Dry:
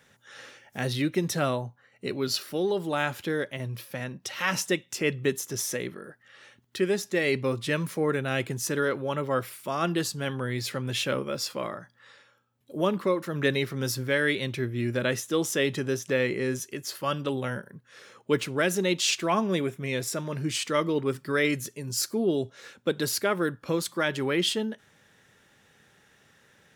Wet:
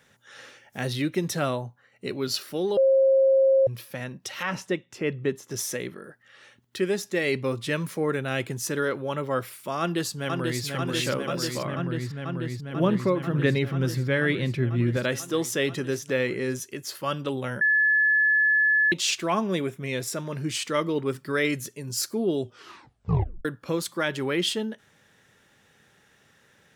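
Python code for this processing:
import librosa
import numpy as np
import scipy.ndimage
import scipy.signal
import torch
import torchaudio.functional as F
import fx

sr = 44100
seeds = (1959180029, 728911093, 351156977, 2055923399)

y = fx.lowpass(x, sr, hz=1600.0, slope=6, at=(4.43, 5.51))
y = fx.echo_throw(y, sr, start_s=9.8, length_s=0.84, ms=490, feedback_pct=85, wet_db=-3.5)
y = fx.bass_treble(y, sr, bass_db=8, treble_db=-9, at=(11.65, 14.97))
y = fx.edit(y, sr, fx.bleep(start_s=2.77, length_s=0.9, hz=536.0, db=-15.5),
    fx.bleep(start_s=17.61, length_s=1.31, hz=1720.0, db=-17.5),
    fx.tape_stop(start_s=22.42, length_s=1.03), tone=tone)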